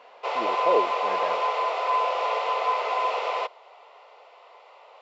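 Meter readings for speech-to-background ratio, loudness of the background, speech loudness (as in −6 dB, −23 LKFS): −5.0 dB, −25.5 LKFS, −30.5 LKFS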